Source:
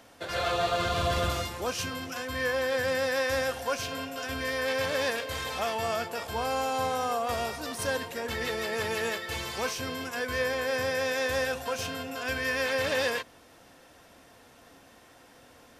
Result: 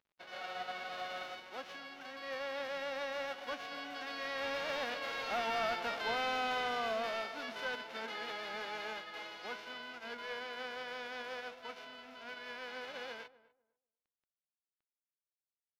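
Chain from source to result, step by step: formants flattened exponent 0.3; Doppler pass-by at 5.83 s, 18 m/s, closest 12 m; high-pass 240 Hz 24 dB/octave; comb 1.4 ms, depth 30%; in parallel at 0 dB: compression, threshold -43 dBFS, peak gain reduction 15.5 dB; on the sum: short-mantissa float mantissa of 2-bit; saturation -28.5 dBFS, distortion -12 dB; word length cut 10-bit, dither none; distance through air 290 m; filtered feedback delay 248 ms, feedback 19%, low-pass 1 kHz, level -17 dB; trim +2 dB

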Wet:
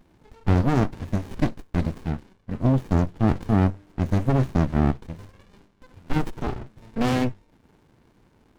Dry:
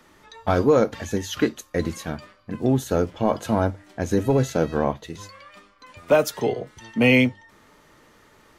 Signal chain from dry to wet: sliding maximum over 65 samples

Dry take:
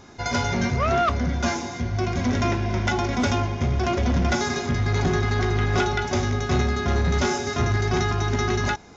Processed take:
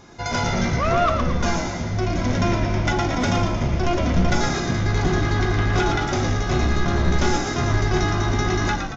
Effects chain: frequency-shifting echo 114 ms, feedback 53%, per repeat -63 Hz, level -5.5 dB; simulated room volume 710 m³, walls furnished, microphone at 0.72 m

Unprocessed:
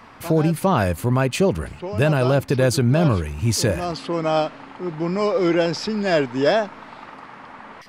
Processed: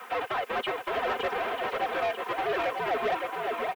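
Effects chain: square wave that keeps the level; reverb removal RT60 1.1 s; comb 4.5 ms, depth 56%; compression 4:1, threshold -16 dBFS, peak gain reduction 7.5 dB; peak limiter -15.5 dBFS, peak gain reduction 7 dB; time stretch by phase-locked vocoder 0.59×; mistuned SSB -78 Hz 370–2700 Hz; added noise violet -45 dBFS; wide varispeed 1.24×; shuffle delay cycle 942 ms, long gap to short 1.5:1, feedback 35%, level -5.5 dB; overdrive pedal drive 17 dB, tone 2 kHz, clips at -11 dBFS; trim -8 dB

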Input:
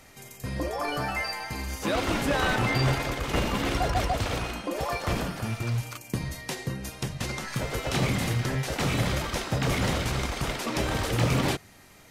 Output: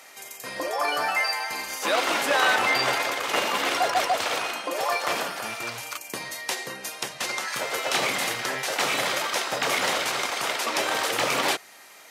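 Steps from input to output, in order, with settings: high-pass 590 Hz 12 dB/octave; trim +6.5 dB

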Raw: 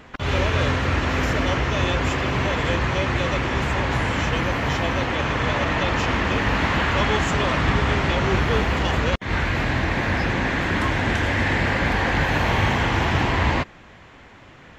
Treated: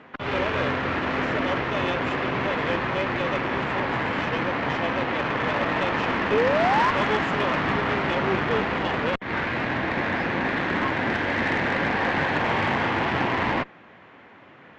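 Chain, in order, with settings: painted sound rise, 6.31–6.91 s, 400–1100 Hz -21 dBFS; band-pass 180–2600 Hz; Chebyshev shaper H 6 -22 dB, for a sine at -8.5 dBFS; trim -1 dB

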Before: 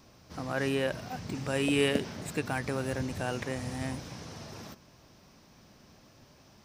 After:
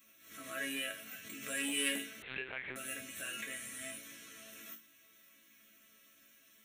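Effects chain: static phaser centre 2.1 kHz, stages 4; chord resonator A3 major, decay 0.29 s; saturation -36 dBFS, distortion -24 dB; 2.22–2.76 s: monotone LPC vocoder at 8 kHz 130 Hz; tilt EQ +4.5 dB/octave; swell ahead of each attack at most 80 dB/s; trim +12 dB

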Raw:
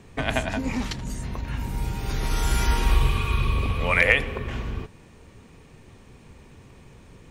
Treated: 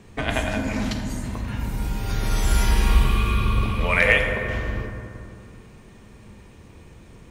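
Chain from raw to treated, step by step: on a send: treble shelf 10 kHz +10 dB + reverberation RT60 2.6 s, pre-delay 5 ms, DRR 3.5 dB

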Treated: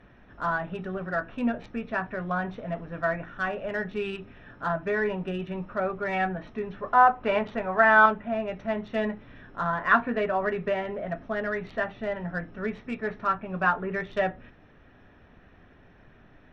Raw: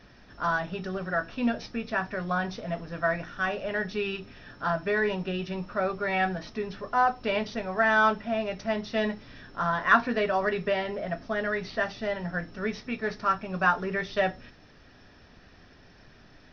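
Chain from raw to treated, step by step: local Wiener filter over 9 samples; low-pass that closes with the level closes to 2.9 kHz, closed at -24.5 dBFS; 6.82–8.06 s: peaking EQ 1.1 kHz +6.5 dB 2 oct

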